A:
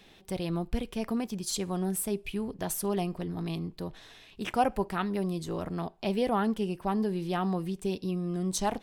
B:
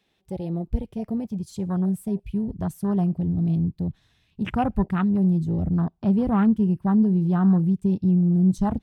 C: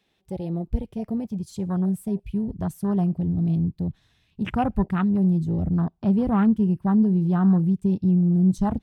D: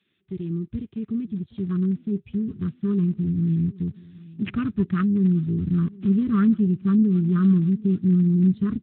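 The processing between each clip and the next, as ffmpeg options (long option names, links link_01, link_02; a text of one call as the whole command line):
ffmpeg -i in.wav -af "highpass=51,afwtdn=0.02,asubboost=boost=10:cutoff=150,volume=3dB" out.wav
ffmpeg -i in.wav -af anull out.wav
ffmpeg -i in.wav -af "asuperstop=centerf=690:order=12:qfactor=0.99,aecho=1:1:774|1548|2322:0.0794|0.0365|0.0168" -ar 8000 -c:a libspeex -b:a 18k out.spx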